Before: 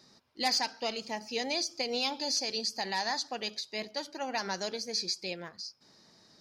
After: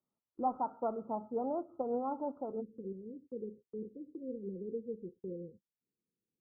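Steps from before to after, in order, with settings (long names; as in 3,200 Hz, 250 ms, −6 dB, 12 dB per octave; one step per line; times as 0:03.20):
Chebyshev low-pass filter 1,400 Hz, order 10, from 0:02.60 520 Hz
noise gate −55 dBFS, range −28 dB
level +1 dB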